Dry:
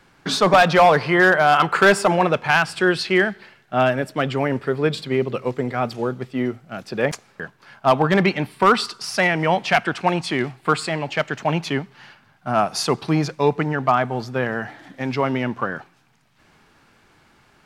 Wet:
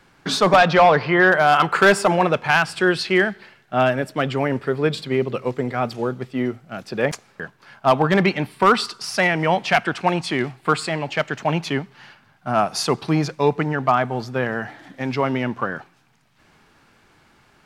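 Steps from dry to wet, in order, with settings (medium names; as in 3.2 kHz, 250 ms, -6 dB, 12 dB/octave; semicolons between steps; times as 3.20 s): 0.56–1.30 s: low-pass 6.2 kHz -> 3.5 kHz 12 dB/octave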